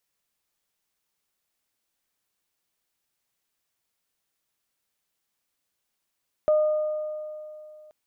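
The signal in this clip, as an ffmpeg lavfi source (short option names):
-f lavfi -i "aevalsrc='0.158*pow(10,-3*t/2.74)*sin(2*PI*612*t)+0.0188*pow(10,-3*t/2.14)*sin(2*PI*1224*t)':d=1.43:s=44100"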